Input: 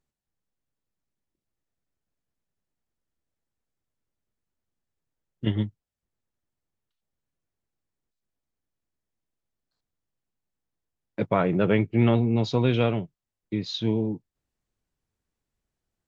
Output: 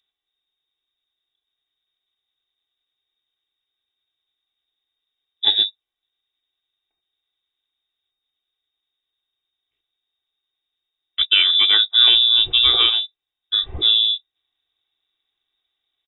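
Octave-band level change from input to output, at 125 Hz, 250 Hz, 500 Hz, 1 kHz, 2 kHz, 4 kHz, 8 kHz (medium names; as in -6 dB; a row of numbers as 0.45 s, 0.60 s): under -15 dB, under -20 dB, -14.5 dB, -1.5 dB, +9.5 dB, +27.0 dB, no reading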